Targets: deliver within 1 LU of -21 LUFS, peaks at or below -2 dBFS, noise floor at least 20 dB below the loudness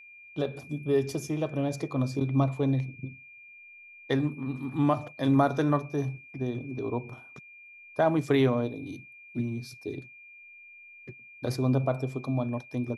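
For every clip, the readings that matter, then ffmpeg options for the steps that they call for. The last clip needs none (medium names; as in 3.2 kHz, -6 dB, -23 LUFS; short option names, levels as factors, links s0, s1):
steady tone 2.4 kHz; tone level -48 dBFS; loudness -29.5 LUFS; peak level -11.0 dBFS; loudness target -21.0 LUFS
-> -af "bandreject=f=2400:w=30"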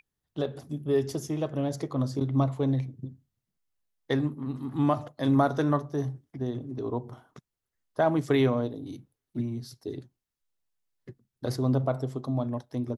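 steady tone not found; loudness -29.5 LUFS; peak level -11.0 dBFS; loudness target -21.0 LUFS
-> -af "volume=2.66"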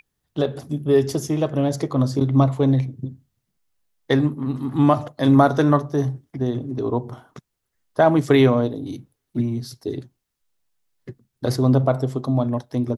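loudness -21.0 LUFS; peak level -2.5 dBFS; noise floor -78 dBFS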